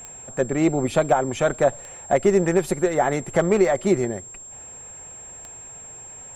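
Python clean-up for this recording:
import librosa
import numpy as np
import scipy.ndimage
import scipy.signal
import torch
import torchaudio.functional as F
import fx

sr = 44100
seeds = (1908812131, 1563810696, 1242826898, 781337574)

y = fx.fix_declick_ar(x, sr, threshold=10.0)
y = fx.notch(y, sr, hz=7500.0, q=30.0)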